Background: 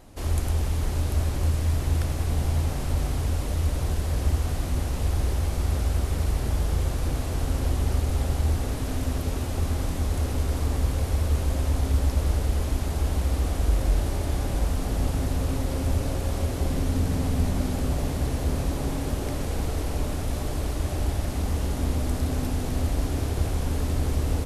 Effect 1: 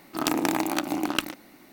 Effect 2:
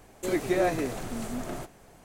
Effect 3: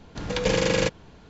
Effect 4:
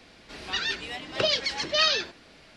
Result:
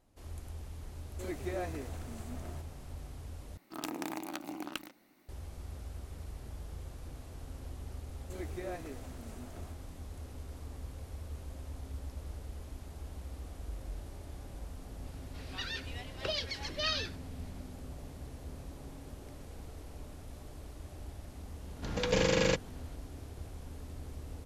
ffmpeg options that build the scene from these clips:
ffmpeg -i bed.wav -i cue0.wav -i cue1.wav -i cue2.wav -i cue3.wav -filter_complex "[2:a]asplit=2[link_01][link_02];[0:a]volume=-19.5dB,asplit=2[link_03][link_04];[link_03]atrim=end=3.574[link_05];[1:a]atrim=end=1.72,asetpts=PTS-STARTPTS,volume=-14dB[link_06];[link_04]atrim=start=5.286[link_07];[link_01]atrim=end=2.04,asetpts=PTS-STARTPTS,volume=-12.5dB,afade=type=in:duration=0.004:curve=hsin,afade=type=out:start_time=2.036:duration=0.004:curve=hsin,adelay=960[link_08];[link_02]atrim=end=2.04,asetpts=PTS-STARTPTS,volume=-16dB,afade=type=in:duration=0.004:curve=hsin,afade=type=out:start_time=2.036:duration=0.004:curve=hsin,adelay=8070[link_09];[4:a]atrim=end=2.56,asetpts=PTS-STARTPTS,volume=-11dB,afade=type=in:duration=0.004:curve=hsin,afade=type=out:start_time=2.556:duration=0.004:curve=hsin,adelay=15050[link_10];[3:a]atrim=end=1.29,asetpts=PTS-STARTPTS,volume=-5.5dB,afade=type=in:duration=0.004:curve=hsin,afade=type=out:start_time=1.286:duration=0.004:curve=hsin,adelay=21670[link_11];[link_05][link_06]acrossfade=duration=0.004:curve1=hsin:curve2=hsin[link_12];[link_12][link_07]acrossfade=duration=0.004:curve1=hsin:curve2=hsin[link_13];[link_13][link_08][link_09][link_10][link_11]amix=inputs=5:normalize=0" out.wav

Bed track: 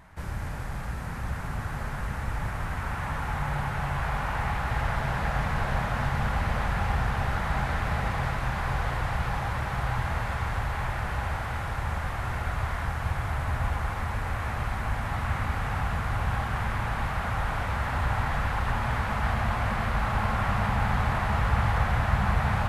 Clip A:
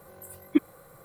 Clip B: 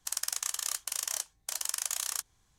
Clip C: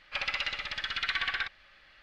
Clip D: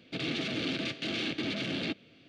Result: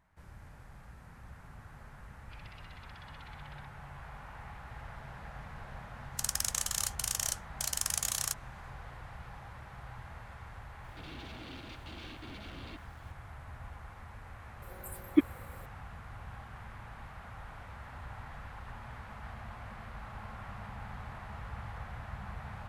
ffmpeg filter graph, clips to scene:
ffmpeg -i bed.wav -i cue0.wav -i cue1.wav -i cue2.wav -i cue3.wav -filter_complex "[0:a]volume=-18.5dB[link_01];[3:a]acompressor=threshold=-34dB:ratio=6:attack=3.2:release=140:knee=1:detection=peak[link_02];[4:a]aeval=exprs='val(0)+0.5*0.00562*sgn(val(0))':channel_layout=same[link_03];[link_02]atrim=end=2.02,asetpts=PTS-STARTPTS,volume=-18dB,afade=type=in:duration=0.004:curve=hsin,afade=type=out:start_time=2.016:duration=0.004:curve=hsin,adelay=2180[link_04];[2:a]atrim=end=2.58,asetpts=PTS-STARTPTS,afade=type=in:duration=0.004:curve=hsin,afade=type=out:start_time=2.576:duration=0.004:curve=hsin,adelay=6120[link_05];[link_03]atrim=end=2.28,asetpts=PTS-STARTPTS,volume=-16.5dB,afade=type=in:duration=0.004:curve=hsin,afade=type=out:start_time=2.276:duration=0.004:curve=hsin,adelay=10840[link_06];[1:a]atrim=end=1.04,asetpts=PTS-STARTPTS,volume=-1.5dB,afade=type=in:duration=0.004:curve=hsin,afade=type=out:start_time=1.036:duration=0.004:curve=hsin,adelay=14620[link_07];[link_01][link_04][link_05][link_06][link_07]amix=inputs=5:normalize=0" out.wav

